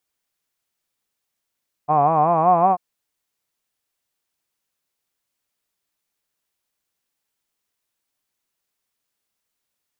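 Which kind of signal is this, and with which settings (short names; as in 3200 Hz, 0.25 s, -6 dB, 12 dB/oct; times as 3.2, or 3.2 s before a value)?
formant-synthesis vowel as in hod, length 0.89 s, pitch 144 Hz, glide +4.5 st, vibrato depth 1.1 st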